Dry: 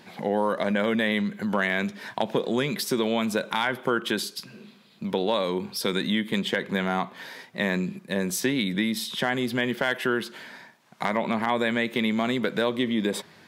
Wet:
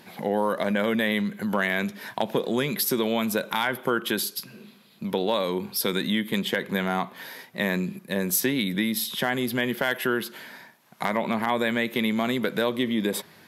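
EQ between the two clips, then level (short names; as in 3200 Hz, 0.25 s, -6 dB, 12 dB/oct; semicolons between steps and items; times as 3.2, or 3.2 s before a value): bell 12000 Hz +15 dB 0.32 oct; 0.0 dB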